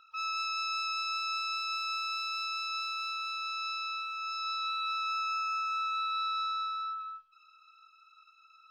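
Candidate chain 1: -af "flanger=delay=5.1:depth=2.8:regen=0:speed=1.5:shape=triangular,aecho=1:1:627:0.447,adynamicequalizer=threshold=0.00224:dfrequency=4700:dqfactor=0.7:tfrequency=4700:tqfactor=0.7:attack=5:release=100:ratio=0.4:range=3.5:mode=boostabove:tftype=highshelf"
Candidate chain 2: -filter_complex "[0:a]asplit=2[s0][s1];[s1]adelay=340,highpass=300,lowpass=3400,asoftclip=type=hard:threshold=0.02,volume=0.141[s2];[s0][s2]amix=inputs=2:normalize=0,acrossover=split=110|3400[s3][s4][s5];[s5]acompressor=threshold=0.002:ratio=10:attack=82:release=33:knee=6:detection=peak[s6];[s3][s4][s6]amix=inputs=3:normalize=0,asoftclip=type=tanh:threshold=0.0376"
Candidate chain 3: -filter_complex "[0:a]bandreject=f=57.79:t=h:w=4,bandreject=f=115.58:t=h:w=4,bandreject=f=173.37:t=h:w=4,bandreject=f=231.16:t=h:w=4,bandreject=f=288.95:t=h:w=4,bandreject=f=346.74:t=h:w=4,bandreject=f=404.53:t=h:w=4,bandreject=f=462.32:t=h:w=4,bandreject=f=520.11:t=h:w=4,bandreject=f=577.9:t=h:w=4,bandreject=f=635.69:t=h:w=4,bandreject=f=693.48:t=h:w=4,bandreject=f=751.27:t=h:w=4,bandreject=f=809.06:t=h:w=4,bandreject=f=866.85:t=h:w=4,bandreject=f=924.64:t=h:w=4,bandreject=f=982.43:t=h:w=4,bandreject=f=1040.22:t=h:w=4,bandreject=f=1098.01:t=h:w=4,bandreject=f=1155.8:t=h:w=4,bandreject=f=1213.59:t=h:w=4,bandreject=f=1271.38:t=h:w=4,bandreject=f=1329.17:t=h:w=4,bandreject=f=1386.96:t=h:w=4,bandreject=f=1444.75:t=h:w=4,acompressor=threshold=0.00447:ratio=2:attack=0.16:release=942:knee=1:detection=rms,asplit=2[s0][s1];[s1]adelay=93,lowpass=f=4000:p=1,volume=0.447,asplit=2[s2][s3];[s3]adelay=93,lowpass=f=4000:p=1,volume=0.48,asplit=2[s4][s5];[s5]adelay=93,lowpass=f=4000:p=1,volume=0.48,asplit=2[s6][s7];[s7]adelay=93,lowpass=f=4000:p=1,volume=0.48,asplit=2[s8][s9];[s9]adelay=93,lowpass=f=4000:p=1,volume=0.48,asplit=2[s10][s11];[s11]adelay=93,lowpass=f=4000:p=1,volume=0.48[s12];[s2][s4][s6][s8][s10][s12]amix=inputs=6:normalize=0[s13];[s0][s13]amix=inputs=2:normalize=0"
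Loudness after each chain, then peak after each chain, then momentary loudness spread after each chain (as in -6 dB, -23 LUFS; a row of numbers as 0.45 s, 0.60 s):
-34.0 LUFS, -35.0 LUFS, -41.5 LUFS; -22.5 dBFS, -30.0 dBFS, -33.0 dBFS; 5 LU, 4 LU, 18 LU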